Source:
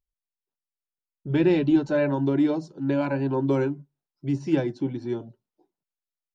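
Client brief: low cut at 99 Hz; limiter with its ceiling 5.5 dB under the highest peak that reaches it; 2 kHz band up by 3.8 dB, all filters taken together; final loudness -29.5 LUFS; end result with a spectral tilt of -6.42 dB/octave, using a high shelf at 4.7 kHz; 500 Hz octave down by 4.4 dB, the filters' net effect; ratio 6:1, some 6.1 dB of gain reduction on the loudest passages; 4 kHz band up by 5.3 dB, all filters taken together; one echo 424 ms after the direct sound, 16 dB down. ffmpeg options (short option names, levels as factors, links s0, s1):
-af "highpass=99,equalizer=f=500:t=o:g=-6.5,equalizer=f=2000:t=o:g=4,equalizer=f=4000:t=o:g=3.5,highshelf=f=4700:g=4,acompressor=threshold=0.0631:ratio=6,alimiter=limit=0.075:level=0:latency=1,aecho=1:1:424:0.158,volume=1.33"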